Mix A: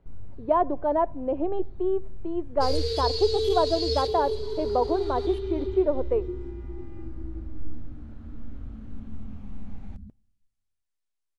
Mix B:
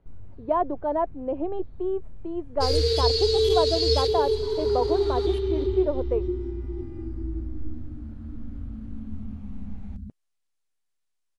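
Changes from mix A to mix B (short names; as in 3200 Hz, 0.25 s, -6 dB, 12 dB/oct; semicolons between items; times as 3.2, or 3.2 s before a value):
second sound +6.0 dB; reverb: off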